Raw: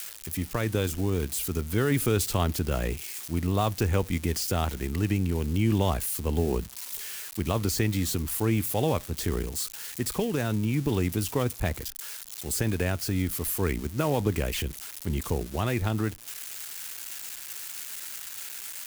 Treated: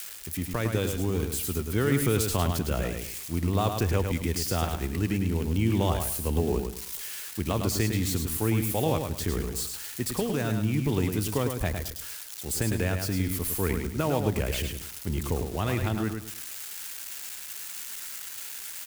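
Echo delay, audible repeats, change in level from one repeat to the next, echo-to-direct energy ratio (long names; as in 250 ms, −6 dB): 106 ms, 3, −11.0 dB, −5.5 dB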